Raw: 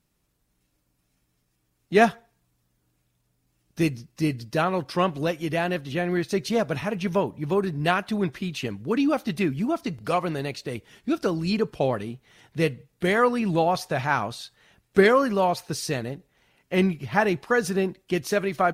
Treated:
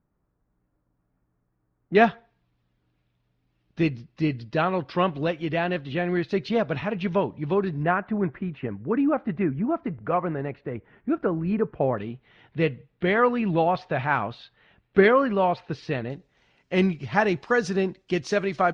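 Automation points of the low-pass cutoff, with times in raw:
low-pass 24 dB/octave
1.5 kHz
from 1.95 s 3.9 kHz
from 7.83 s 1.9 kHz
from 11.98 s 3.3 kHz
from 16.10 s 6.1 kHz

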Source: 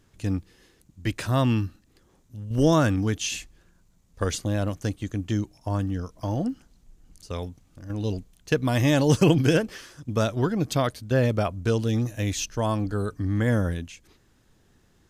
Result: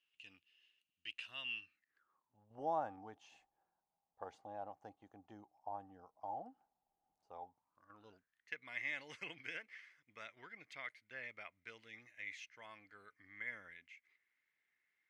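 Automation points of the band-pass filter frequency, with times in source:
band-pass filter, Q 13
1.62 s 2.8 kHz
2.37 s 800 Hz
7.47 s 800 Hz
8.54 s 2.1 kHz

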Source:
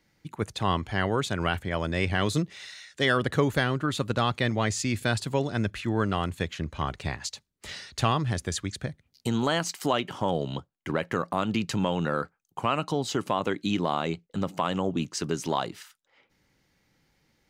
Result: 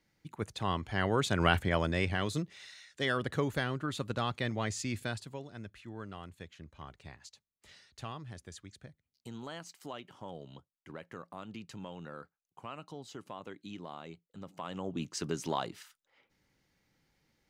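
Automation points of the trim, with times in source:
0.78 s -7 dB
1.59 s +2 dB
2.27 s -8 dB
4.97 s -8 dB
5.43 s -18 dB
14.39 s -18 dB
15.13 s -6 dB

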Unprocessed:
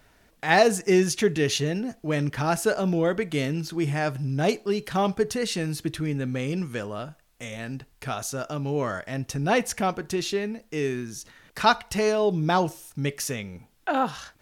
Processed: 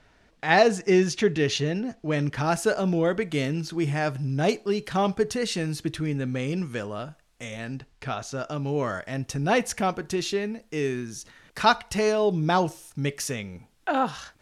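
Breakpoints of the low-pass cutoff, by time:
1.98 s 5.8 kHz
2.52 s 9.7 kHz
7.59 s 9.7 kHz
8.22 s 4.3 kHz
8.68 s 11 kHz

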